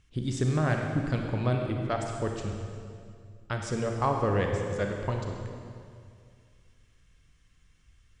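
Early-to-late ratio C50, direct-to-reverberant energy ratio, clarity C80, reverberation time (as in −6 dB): 3.0 dB, 2.0 dB, 4.0 dB, 2.3 s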